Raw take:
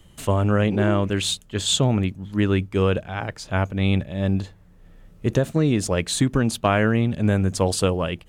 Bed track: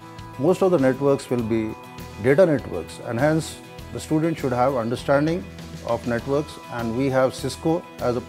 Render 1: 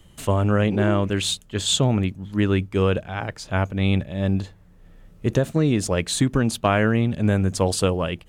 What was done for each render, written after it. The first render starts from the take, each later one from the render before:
no processing that can be heard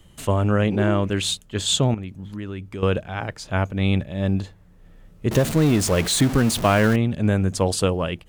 0:01.94–0:02.83: downward compressor 4 to 1, threshold −30 dBFS
0:05.31–0:06.96: converter with a step at zero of −23 dBFS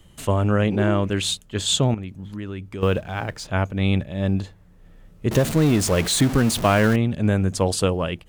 0:02.81–0:03.47: mu-law and A-law mismatch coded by mu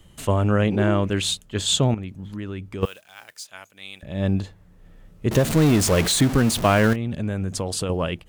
0:02.85–0:04.03: first difference
0:05.50–0:06.12: converter with a step at zero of −29 dBFS
0:06.93–0:07.90: downward compressor, threshold −22 dBFS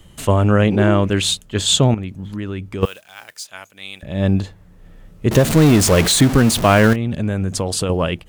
level +5.5 dB
brickwall limiter −1 dBFS, peak gain reduction 1.5 dB

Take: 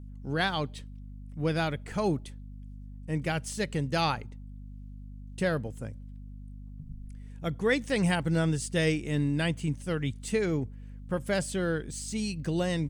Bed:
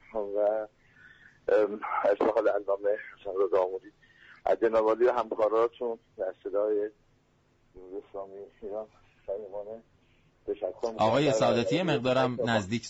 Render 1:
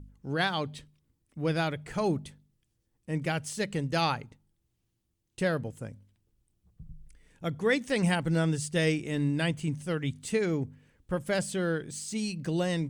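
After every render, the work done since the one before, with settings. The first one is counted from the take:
hum removal 50 Hz, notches 5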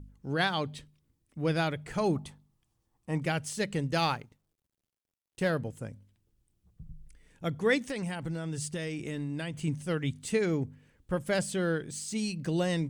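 0:02.15–0:03.22: flat-topped bell 930 Hz +9.5 dB 1 octave
0:03.95–0:05.50: mu-law and A-law mismatch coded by A
0:07.82–0:09.57: downward compressor 12 to 1, threshold −30 dBFS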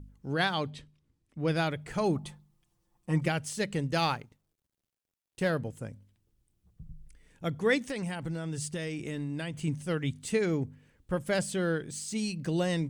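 0:00.70–0:01.48: high-frequency loss of the air 50 metres
0:02.23–0:03.28: comb filter 5.7 ms, depth 82%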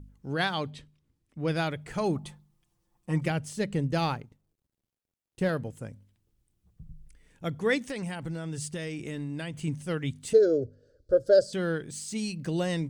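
0:03.30–0:05.49: tilt shelving filter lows +4 dB, about 700 Hz
0:10.33–0:11.53: drawn EQ curve 120 Hz 0 dB, 170 Hz −16 dB, 410 Hz +9 dB, 590 Hz +13 dB, 910 Hz −26 dB, 1,500 Hz 0 dB, 2,200 Hz −30 dB, 4,700 Hz +5 dB, 6,700 Hz −5 dB, 10,000 Hz −15 dB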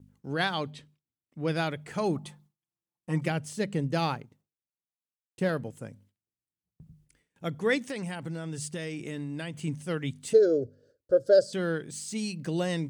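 high-pass filter 120 Hz 12 dB per octave
noise gate with hold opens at −52 dBFS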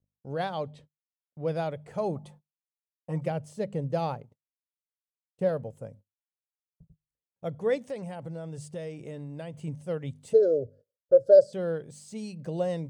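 noise gate −50 dBFS, range −27 dB
drawn EQ curve 120 Hz 0 dB, 320 Hz −8 dB, 550 Hz +5 dB, 1,600 Hz −11 dB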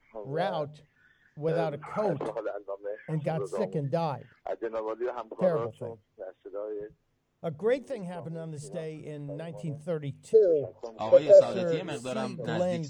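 mix in bed −8.5 dB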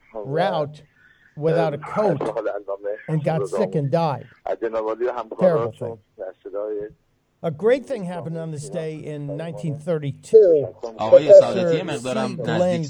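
level +9 dB
brickwall limiter −1 dBFS, peak gain reduction 2.5 dB

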